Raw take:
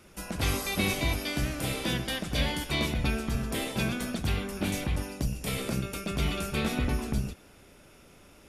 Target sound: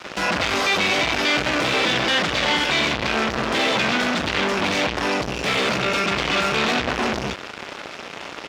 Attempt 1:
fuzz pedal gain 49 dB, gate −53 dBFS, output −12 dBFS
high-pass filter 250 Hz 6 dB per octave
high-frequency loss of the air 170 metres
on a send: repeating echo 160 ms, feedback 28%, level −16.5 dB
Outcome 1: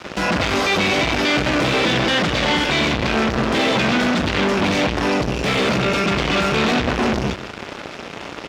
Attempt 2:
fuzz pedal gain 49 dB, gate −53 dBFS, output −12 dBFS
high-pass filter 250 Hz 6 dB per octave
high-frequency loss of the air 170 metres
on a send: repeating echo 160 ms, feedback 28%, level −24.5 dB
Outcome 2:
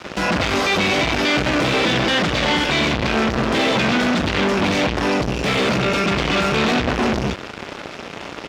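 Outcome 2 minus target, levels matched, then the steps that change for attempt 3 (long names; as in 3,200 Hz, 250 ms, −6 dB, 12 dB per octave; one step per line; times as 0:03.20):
250 Hz band +4.5 dB
change: high-pass filter 690 Hz 6 dB per octave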